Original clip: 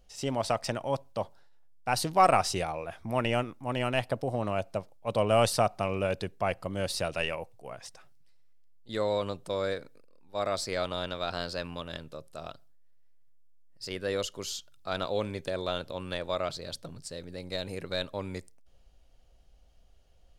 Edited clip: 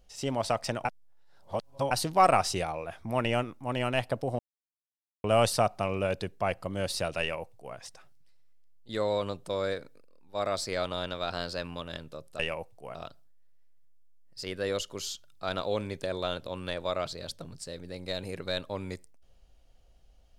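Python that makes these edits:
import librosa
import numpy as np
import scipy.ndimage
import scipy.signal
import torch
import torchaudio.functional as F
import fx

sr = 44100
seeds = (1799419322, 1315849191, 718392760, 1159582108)

y = fx.edit(x, sr, fx.reverse_span(start_s=0.85, length_s=1.06),
    fx.silence(start_s=4.39, length_s=0.85),
    fx.duplicate(start_s=7.2, length_s=0.56, to_s=12.39), tone=tone)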